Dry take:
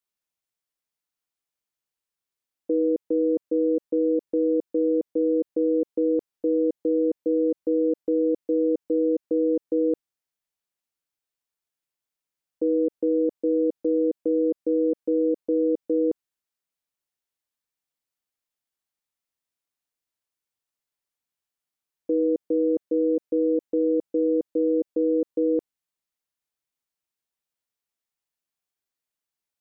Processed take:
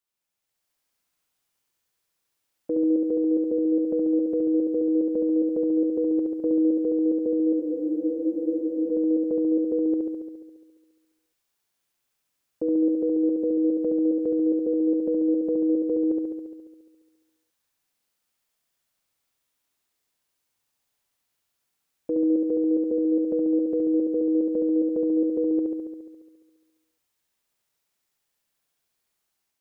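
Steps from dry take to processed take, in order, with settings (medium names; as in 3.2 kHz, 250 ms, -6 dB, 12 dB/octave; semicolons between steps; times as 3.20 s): level rider gain up to 7.5 dB; peak limiter -18.5 dBFS, peak gain reduction 10.5 dB; on a send: flutter echo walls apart 11.9 m, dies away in 1.4 s; on the sum: spectral freeze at 7.61 s, 1.29 s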